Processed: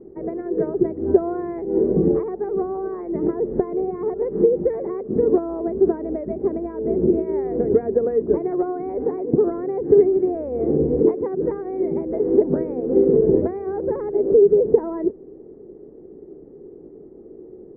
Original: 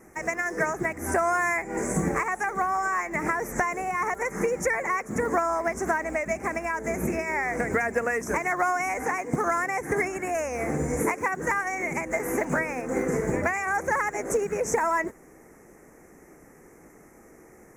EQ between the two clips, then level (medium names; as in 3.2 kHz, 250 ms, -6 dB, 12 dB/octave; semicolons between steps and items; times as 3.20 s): resonant low-pass 400 Hz, resonance Q 4.9; distance through air 370 m; +3.5 dB